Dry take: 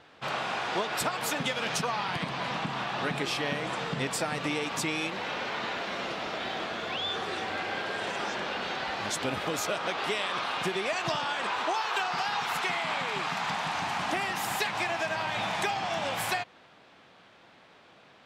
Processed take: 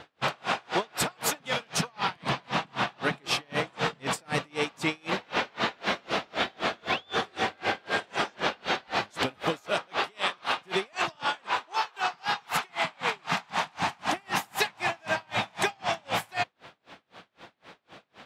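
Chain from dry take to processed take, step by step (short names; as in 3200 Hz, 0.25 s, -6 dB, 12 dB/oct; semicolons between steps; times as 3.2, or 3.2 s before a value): in parallel at -2 dB: negative-ratio compressor -34 dBFS, ratio -0.5; on the sum: dB-linear tremolo 3.9 Hz, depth 35 dB; gain +4 dB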